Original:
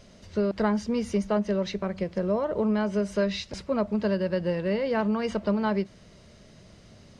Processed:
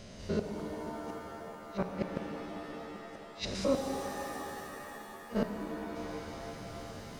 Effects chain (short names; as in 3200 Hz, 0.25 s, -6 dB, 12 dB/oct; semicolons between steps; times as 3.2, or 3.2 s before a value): stepped spectrum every 0.1 s; flipped gate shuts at -23 dBFS, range -37 dB; shimmer reverb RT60 3.5 s, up +7 st, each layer -2 dB, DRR 4.5 dB; gain +4.5 dB